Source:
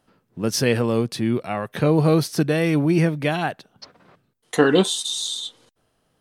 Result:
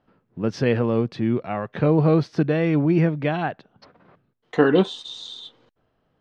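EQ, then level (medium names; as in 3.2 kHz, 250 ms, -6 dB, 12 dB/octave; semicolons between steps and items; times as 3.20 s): distance through air 180 m; treble shelf 4.1 kHz -9 dB; 0.0 dB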